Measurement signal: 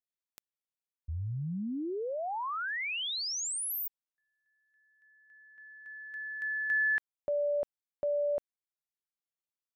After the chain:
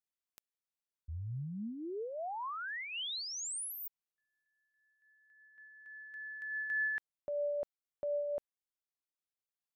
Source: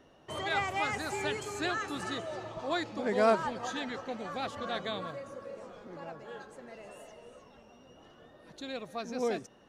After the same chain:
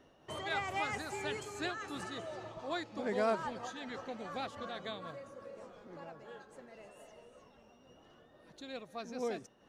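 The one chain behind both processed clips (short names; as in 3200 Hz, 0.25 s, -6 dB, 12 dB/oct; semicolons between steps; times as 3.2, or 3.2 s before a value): noise-modulated level, depth 60%; gain -2 dB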